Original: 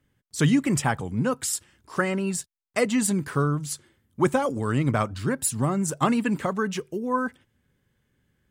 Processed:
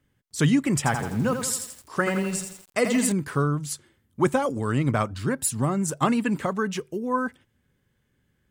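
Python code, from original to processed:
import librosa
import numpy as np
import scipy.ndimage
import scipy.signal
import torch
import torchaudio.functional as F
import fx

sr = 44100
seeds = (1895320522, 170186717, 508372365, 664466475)

y = fx.echo_crushed(x, sr, ms=84, feedback_pct=55, bits=7, wet_db=-6.5, at=(0.77, 3.12))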